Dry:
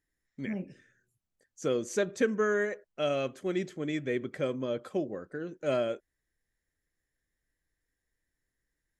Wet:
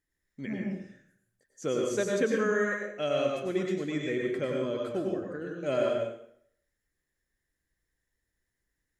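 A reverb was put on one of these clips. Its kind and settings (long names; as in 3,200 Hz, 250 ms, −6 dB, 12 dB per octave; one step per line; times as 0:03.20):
dense smooth reverb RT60 0.66 s, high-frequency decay 0.85×, pre-delay 85 ms, DRR −0.5 dB
level −1.5 dB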